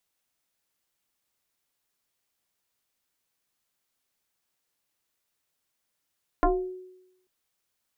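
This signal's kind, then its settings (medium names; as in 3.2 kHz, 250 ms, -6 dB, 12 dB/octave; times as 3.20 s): FM tone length 0.84 s, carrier 369 Hz, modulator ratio 0.92, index 2.9, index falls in 0.42 s exponential, decay 0.89 s, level -16 dB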